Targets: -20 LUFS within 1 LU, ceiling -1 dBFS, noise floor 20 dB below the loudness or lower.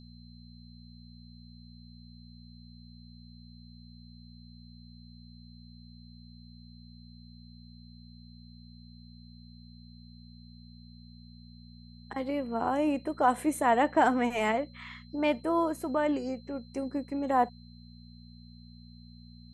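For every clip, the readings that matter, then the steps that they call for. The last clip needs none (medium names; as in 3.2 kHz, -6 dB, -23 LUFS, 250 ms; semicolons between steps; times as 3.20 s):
hum 60 Hz; highest harmonic 240 Hz; hum level -48 dBFS; steady tone 4.1 kHz; tone level -59 dBFS; loudness -29.5 LUFS; peak level -11.5 dBFS; loudness target -20.0 LUFS
-> de-hum 60 Hz, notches 4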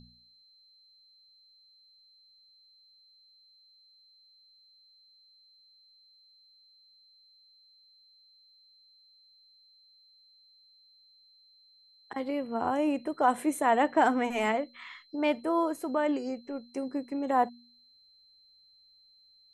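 hum not found; steady tone 4.1 kHz; tone level -59 dBFS
-> band-stop 4.1 kHz, Q 30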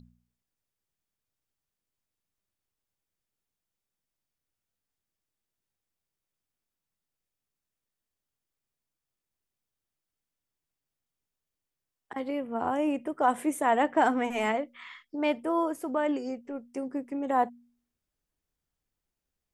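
steady tone not found; loudness -29.0 LUFS; peak level -11.5 dBFS; loudness target -20.0 LUFS
-> trim +9 dB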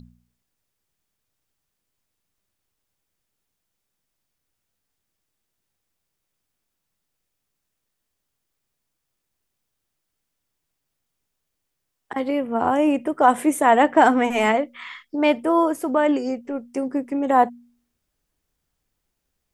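loudness -20.0 LUFS; peak level -2.5 dBFS; noise floor -79 dBFS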